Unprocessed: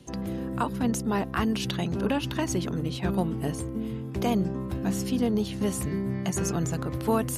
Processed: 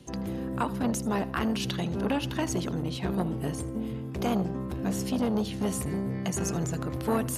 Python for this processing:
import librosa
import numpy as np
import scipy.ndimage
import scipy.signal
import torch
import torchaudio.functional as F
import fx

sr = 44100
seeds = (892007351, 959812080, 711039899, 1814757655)

p1 = x + fx.echo_feedback(x, sr, ms=80, feedback_pct=37, wet_db=-19, dry=0)
y = fx.transformer_sat(p1, sr, knee_hz=530.0)